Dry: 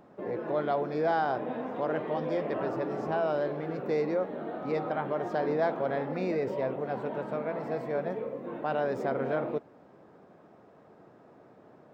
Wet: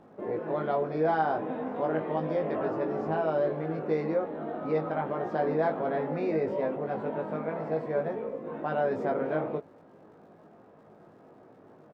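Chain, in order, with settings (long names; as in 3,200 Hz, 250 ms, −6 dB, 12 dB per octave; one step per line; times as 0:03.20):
surface crackle 170 per second −56 dBFS
low-pass filter 2,200 Hz 6 dB per octave
double-tracking delay 19 ms −3.5 dB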